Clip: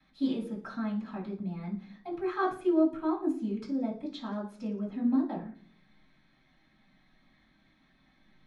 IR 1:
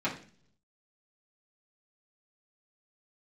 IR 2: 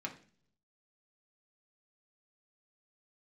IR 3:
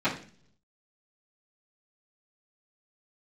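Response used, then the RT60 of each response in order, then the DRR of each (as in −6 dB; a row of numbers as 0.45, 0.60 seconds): 3; 0.45, 0.45, 0.45 seconds; −9.0, 0.0, −15.5 decibels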